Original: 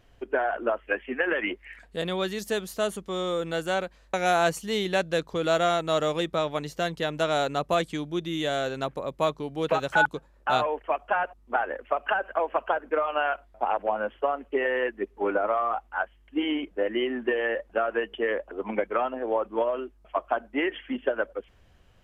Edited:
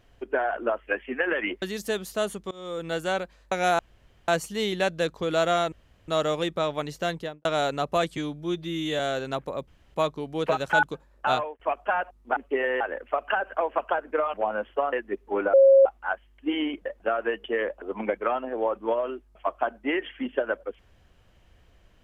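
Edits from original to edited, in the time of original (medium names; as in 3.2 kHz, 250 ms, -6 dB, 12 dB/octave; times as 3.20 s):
1.62–2.24 s: delete
3.13–3.55 s: fade in, from -23.5 dB
4.41 s: insert room tone 0.49 s
5.85 s: insert room tone 0.36 s
6.90–7.22 s: studio fade out
7.94–8.49 s: stretch 1.5×
9.17 s: insert room tone 0.27 s
10.56–10.82 s: fade out
13.12–13.79 s: delete
14.38–14.82 s: move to 11.59 s
15.43–15.75 s: bleep 543 Hz -11.5 dBFS
16.75–17.55 s: delete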